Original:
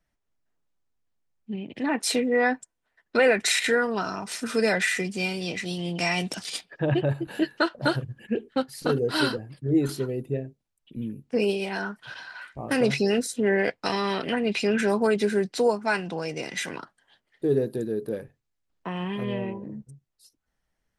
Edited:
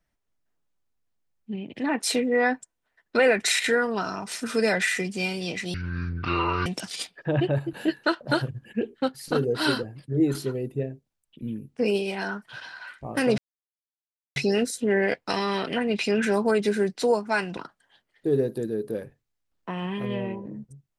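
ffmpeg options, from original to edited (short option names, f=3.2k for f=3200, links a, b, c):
-filter_complex "[0:a]asplit=5[a][b][c][d][e];[a]atrim=end=5.744[f];[b]atrim=start=5.74:end=6.2,asetpts=PTS-STARTPTS,asetrate=22050,aresample=44100[g];[c]atrim=start=6.196:end=12.92,asetpts=PTS-STARTPTS,afade=t=out:st=6.72:d=0.004:c=hsin,apad=pad_dur=0.98[h];[d]atrim=start=12.92:end=16.132,asetpts=PTS-STARTPTS,afade=t=in:d=0.004:c=hsin[i];[e]atrim=start=16.748[j];[f][g]acrossfade=d=0.004:c1=hsin:c2=hsin[k];[h][i]concat=n=2:v=0:a=1[l];[k][l]acrossfade=d=0.004:c1=hsin:c2=hsin[m];[m][j]acrossfade=d=0.004:c1=hsin:c2=hsin"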